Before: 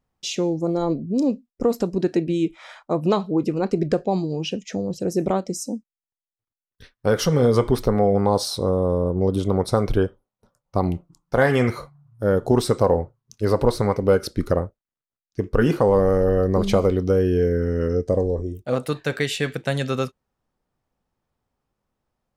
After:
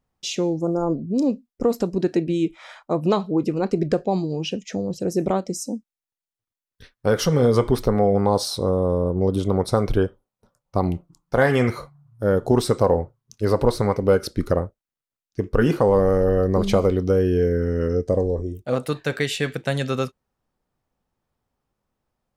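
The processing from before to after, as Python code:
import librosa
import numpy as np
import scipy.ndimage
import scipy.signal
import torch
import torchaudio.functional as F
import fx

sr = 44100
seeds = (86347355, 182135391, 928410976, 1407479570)

y = fx.spec_repair(x, sr, seeds[0], start_s=0.64, length_s=0.32, low_hz=1700.0, high_hz=4800.0, source='both')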